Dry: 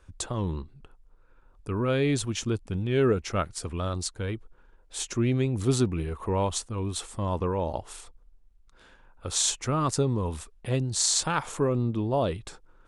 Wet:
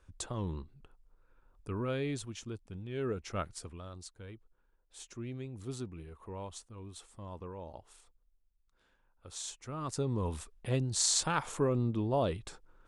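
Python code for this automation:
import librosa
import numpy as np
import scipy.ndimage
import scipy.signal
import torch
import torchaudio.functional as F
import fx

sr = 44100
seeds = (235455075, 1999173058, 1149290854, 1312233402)

y = fx.gain(x, sr, db=fx.line((1.71, -7.0), (2.43, -14.0), (2.93, -14.0), (3.51, -7.0), (3.83, -16.5), (9.62, -16.5), (10.23, -4.5)))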